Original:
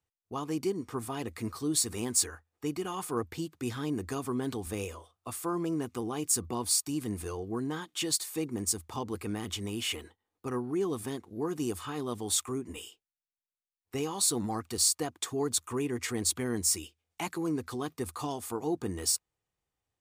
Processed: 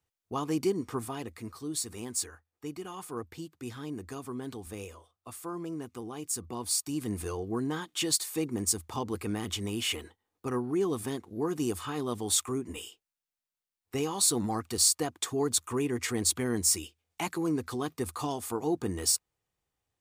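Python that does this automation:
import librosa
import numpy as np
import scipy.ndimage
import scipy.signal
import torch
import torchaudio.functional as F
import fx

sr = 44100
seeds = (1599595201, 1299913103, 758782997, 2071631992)

y = fx.gain(x, sr, db=fx.line((0.88, 3.0), (1.42, -5.5), (6.35, -5.5), (7.2, 2.0)))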